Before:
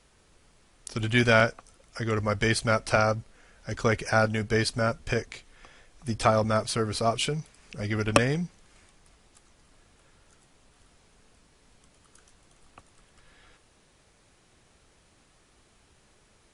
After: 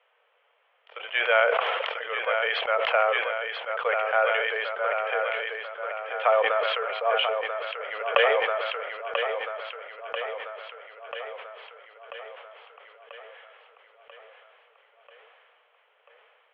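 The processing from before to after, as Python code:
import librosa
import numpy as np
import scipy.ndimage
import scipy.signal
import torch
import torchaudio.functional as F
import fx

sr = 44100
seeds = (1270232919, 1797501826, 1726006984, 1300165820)

p1 = scipy.signal.sosfilt(scipy.signal.cheby1(5, 1.0, [470.0, 3200.0], 'bandpass', fs=sr, output='sos'), x)
p2 = p1 + fx.echo_feedback(p1, sr, ms=989, feedback_pct=60, wet_db=-7.0, dry=0)
y = fx.sustainer(p2, sr, db_per_s=24.0)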